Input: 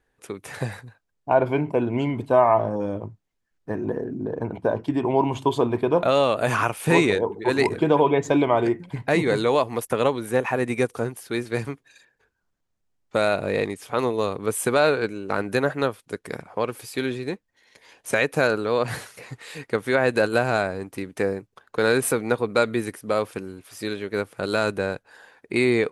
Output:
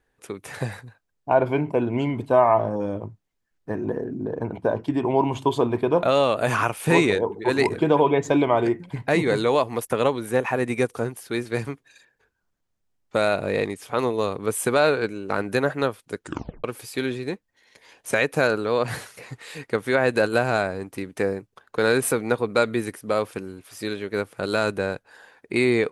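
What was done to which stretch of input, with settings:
16.2 tape stop 0.44 s

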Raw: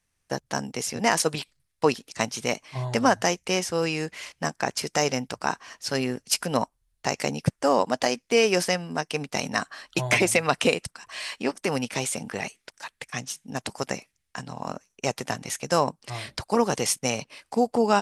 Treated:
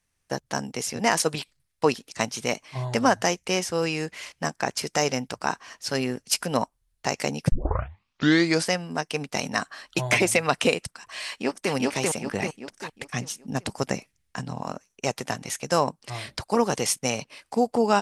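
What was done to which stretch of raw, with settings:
7.52 tape start 1.17 s
11.27–11.72 echo throw 0.39 s, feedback 40%, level -0.5 dB
12.26–14.61 low shelf 360 Hz +7 dB

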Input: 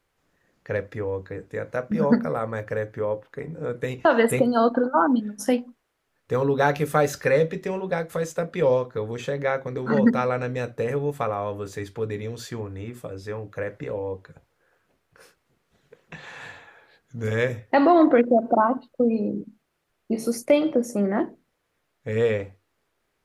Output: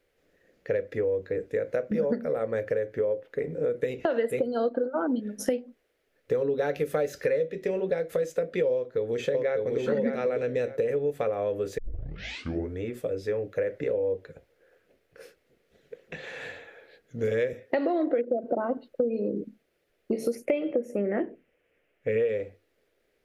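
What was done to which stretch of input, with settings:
8.74–9.81 echo throw 0.6 s, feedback 10%, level -2.5 dB
11.78 tape start 1.03 s
17.53–18.44 HPF 180 Hz
20.35–22.29 resonant high shelf 3300 Hz -6 dB, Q 3
whole clip: graphic EQ 125/500/1000/2000/8000 Hz -5/+11/-12/+4/-4 dB; compressor 6:1, threshold -24 dBFS

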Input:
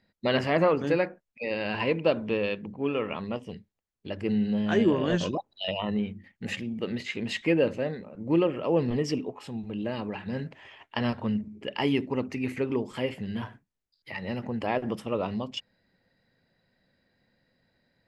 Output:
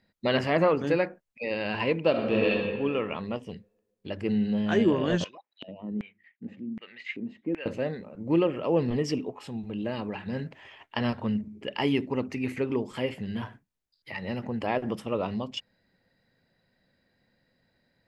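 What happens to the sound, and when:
2.1–2.62 reverb throw, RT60 1.5 s, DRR -3 dB
5.24–7.66 LFO band-pass square 1.3 Hz 260–2100 Hz

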